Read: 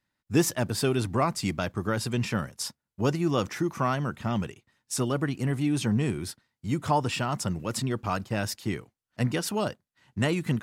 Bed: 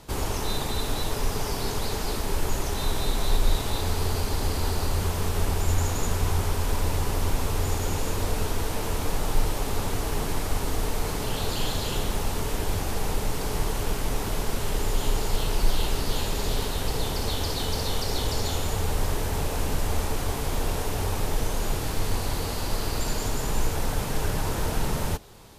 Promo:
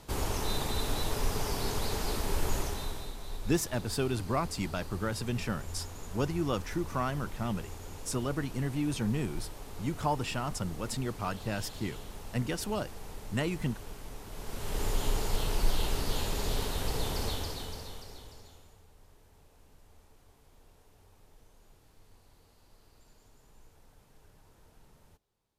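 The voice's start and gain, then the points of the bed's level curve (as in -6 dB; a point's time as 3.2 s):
3.15 s, -5.5 dB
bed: 2.59 s -4 dB
3.17 s -17 dB
14.27 s -17 dB
14.83 s -5 dB
17.25 s -5 dB
18.87 s -33.5 dB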